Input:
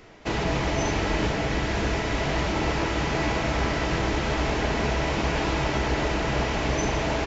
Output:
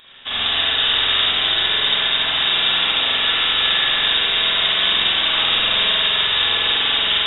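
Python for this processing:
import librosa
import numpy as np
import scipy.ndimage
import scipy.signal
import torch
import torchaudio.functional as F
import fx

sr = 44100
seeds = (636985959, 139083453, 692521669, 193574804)

y = fx.freq_invert(x, sr, carrier_hz=3700)
y = fx.vibrato(y, sr, rate_hz=9.6, depth_cents=13.0)
y = fx.rev_spring(y, sr, rt60_s=1.9, pass_ms=(46,), chirp_ms=35, drr_db=-7.5)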